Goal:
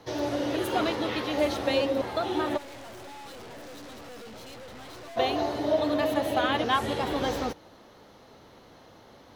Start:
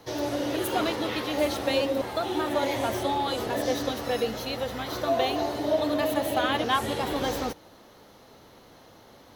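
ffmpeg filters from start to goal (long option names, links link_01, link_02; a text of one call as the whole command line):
ffmpeg -i in.wav -filter_complex "[0:a]highshelf=frequency=8700:gain=-11,asplit=3[link_01][link_02][link_03];[link_01]afade=type=out:start_time=2.56:duration=0.02[link_04];[link_02]aeval=exprs='(tanh(141*val(0)+0.4)-tanh(0.4))/141':channel_layout=same,afade=type=in:start_time=2.56:duration=0.02,afade=type=out:start_time=5.16:duration=0.02[link_05];[link_03]afade=type=in:start_time=5.16:duration=0.02[link_06];[link_04][link_05][link_06]amix=inputs=3:normalize=0" out.wav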